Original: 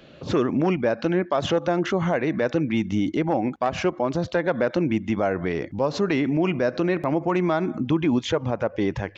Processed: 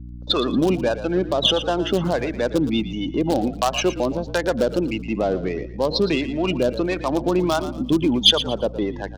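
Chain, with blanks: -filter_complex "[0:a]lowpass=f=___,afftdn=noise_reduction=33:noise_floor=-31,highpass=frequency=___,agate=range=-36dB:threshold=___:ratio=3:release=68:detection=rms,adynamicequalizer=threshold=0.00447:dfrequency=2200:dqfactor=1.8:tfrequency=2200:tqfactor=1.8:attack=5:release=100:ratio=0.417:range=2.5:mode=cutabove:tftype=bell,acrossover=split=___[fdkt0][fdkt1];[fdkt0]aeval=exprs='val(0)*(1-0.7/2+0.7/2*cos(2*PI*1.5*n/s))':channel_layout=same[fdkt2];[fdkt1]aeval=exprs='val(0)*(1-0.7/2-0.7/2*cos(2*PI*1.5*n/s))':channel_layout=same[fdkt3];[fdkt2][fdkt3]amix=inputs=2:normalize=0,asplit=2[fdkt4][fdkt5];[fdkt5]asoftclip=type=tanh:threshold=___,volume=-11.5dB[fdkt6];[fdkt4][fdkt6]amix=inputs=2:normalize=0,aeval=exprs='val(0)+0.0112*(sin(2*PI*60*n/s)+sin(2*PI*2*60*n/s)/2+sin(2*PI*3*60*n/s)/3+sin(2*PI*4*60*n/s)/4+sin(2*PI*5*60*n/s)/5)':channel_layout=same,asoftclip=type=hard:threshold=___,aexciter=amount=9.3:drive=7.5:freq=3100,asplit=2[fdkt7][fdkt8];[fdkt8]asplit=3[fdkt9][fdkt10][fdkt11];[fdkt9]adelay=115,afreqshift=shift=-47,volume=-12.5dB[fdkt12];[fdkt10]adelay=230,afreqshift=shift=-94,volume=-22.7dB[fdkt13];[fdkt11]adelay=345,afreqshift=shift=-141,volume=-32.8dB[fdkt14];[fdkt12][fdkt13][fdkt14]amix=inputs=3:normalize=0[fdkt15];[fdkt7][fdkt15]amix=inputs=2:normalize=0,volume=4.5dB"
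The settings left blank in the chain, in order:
6100, 200, -33dB, 620, -30dB, -16dB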